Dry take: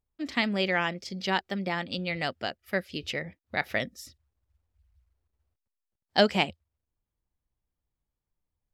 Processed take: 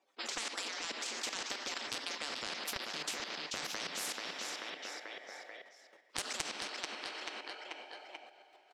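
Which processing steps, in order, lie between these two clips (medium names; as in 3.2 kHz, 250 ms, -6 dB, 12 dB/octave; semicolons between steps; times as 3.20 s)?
harmonic-percussive separation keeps percussive; in parallel at -10 dB: sine folder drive 10 dB, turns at -7 dBFS; on the sum: treble shelf 3.8 kHz -5.5 dB; on a send at -3 dB: reverberation, pre-delay 3 ms; on the sum: level held to a coarse grid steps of 16 dB; ladder high-pass 270 Hz, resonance 25%; three-band isolator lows -13 dB, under 430 Hz, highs -21 dB, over 6.8 kHz; compression, threshold -40 dBFS, peak gain reduction 18 dB; feedback delay 437 ms, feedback 41%, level -14 dB; spectrum-flattening compressor 10:1; trim +8 dB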